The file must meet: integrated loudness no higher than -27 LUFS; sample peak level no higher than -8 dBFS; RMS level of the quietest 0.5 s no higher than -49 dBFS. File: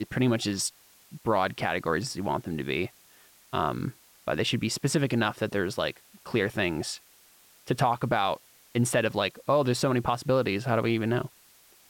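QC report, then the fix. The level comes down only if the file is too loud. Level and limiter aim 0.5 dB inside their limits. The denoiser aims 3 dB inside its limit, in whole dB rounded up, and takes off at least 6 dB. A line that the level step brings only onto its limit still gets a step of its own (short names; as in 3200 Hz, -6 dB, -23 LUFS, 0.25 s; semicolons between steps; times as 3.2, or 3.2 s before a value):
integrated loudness -28.0 LUFS: OK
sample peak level -13.0 dBFS: OK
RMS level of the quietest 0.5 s -58 dBFS: OK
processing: none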